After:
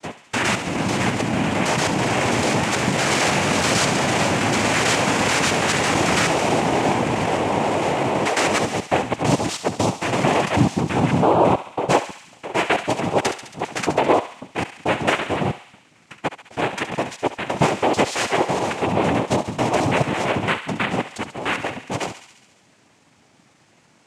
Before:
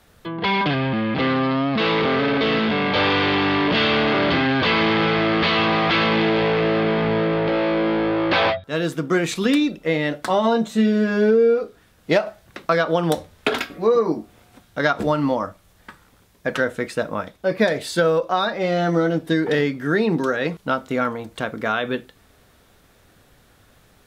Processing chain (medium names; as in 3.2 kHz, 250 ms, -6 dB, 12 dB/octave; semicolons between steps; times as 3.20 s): slices played last to first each 110 ms, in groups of 3; noise-vocoded speech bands 4; thinning echo 69 ms, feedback 71%, high-pass 1.1 kHz, level -9.5 dB